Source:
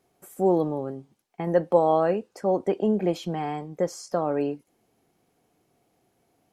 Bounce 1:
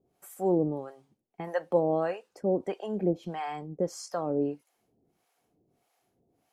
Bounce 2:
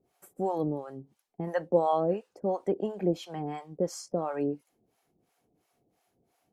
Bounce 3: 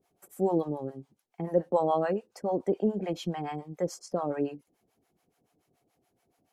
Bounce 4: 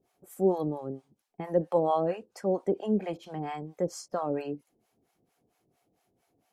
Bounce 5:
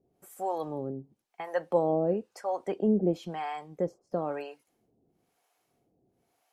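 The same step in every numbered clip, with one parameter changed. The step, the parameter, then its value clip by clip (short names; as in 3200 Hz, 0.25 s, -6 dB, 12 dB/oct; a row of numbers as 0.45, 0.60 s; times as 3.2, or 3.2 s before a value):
harmonic tremolo, rate: 1.6, 2.9, 7, 4.4, 1 Hz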